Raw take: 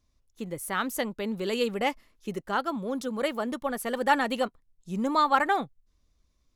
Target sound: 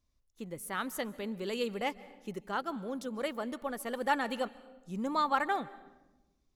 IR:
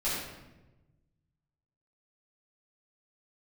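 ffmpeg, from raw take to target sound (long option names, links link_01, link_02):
-filter_complex "[0:a]asplit=2[link_01][link_02];[1:a]atrim=start_sample=2205,adelay=133[link_03];[link_02][link_03]afir=irnorm=-1:irlink=0,volume=-26.5dB[link_04];[link_01][link_04]amix=inputs=2:normalize=0,volume=-6.5dB"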